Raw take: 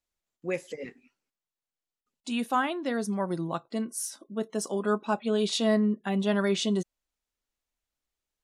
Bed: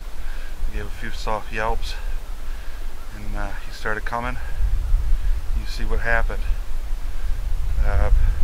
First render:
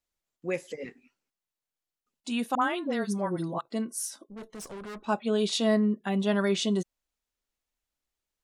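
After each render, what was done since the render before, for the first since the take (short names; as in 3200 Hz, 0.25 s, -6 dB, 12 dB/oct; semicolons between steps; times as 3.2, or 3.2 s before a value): 2.55–3.61 dispersion highs, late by 67 ms, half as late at 890 Hz; 4.25–5.07 tube stage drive 38 dB, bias 0.75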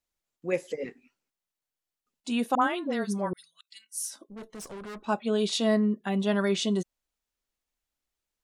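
0.52–2.67 dynamic EQ 470 Hz, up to +5 dB, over -43 dBFS, Q 0.78; 3.33–4.05 inverse Chebyshev high-pass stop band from 920 Hz, stop band 50 dB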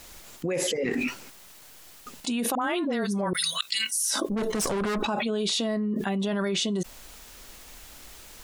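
limiter -23 dBFS, peak gain reduction 10.5 dB; fast leveller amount 100%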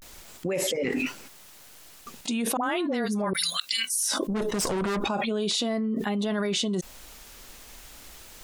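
vibrato 0.37 Hz 77 cents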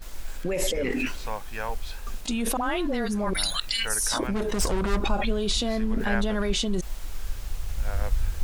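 add bed -8.5 dB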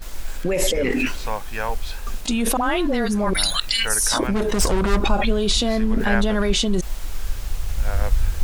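gain +6 dB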